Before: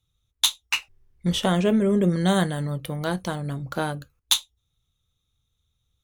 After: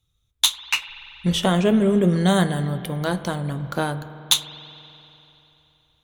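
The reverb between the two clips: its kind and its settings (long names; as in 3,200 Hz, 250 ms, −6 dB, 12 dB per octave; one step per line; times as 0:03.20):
spring reverb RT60 3.3 s, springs 47 ms, chirp 70 ms, DRR 12 dB
level +2.5 dB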